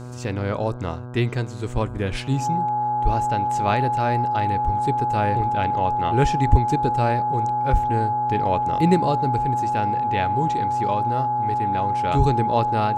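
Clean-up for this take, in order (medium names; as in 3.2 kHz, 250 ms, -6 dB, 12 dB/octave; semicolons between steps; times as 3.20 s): de-hum 123.3 Hz, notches 13; band-stop 840 Hz, Q 30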